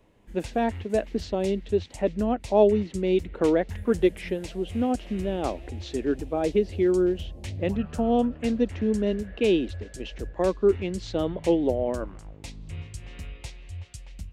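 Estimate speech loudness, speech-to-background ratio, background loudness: -26.0 LUFS, 14.5 dB, -40.5 LUFS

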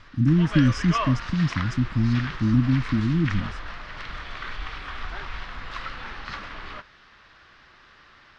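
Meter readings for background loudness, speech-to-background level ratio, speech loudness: -34.0 LUFS, 11.0 dB, -23.0 LUFS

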